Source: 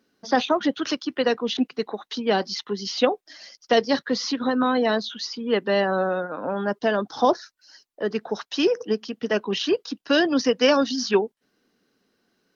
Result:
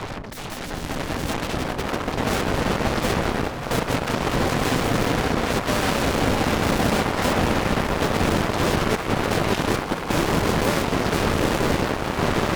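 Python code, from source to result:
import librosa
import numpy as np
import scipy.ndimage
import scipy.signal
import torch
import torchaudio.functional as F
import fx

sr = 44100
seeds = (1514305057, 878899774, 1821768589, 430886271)

p1 = fx.law_mismatch(x, sr, coded='A')
p2 = fx.dmg_wind(p1, sr, seeds[0], corner_hz=260.0, level_db=-22.0)
p3 = scipy.signal.sosfilt(scipy.signal.butter(2, 1100.0, 'lowpass', fs=sr, output='sos'), p2)
p4 = fx.fuzz(p3, sr, gain_db=37.0, gate_db=-42.0)
p5 = p4 + fx.echo_swell(p4, sr, ms=194, loudest=8, wet_db=-15, dry=0)
p6 = fx.cheby_harmonics(p5, sr, harmonics=(7,), levels_db=(-9,), full_scale_db=-3.0)
y = F.gain(torch.from_numpy(p6), -8.5).numpy()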